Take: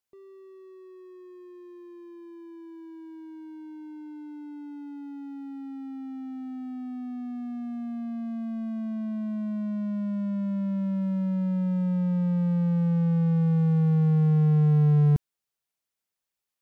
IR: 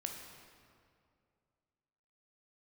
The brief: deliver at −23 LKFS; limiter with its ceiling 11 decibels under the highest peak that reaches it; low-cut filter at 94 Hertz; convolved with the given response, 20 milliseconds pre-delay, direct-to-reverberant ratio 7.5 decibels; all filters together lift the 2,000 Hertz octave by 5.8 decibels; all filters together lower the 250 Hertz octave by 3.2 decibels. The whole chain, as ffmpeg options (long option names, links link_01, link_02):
-filter_complex "[0:a]highpass=94,equalizer=frequency=250:width_type=o:gain=-5.5,equalizer=frequency=2000:width_type=o:gain=7.5,alimiter=level_in=4.5dB:limit=-24dB:level=0:latency=1,volume=-4.5dB,asplit=2[link_01][link_02];[1:a]atrim=start_sample=2205,adelay=20[link_03];[link_02][link_03]afir=irnorm=-1:irlink=0,volume=-6.5dB[link_04];[link_01][link_04]amix=inputs=2:normalize=0,volume=12dB"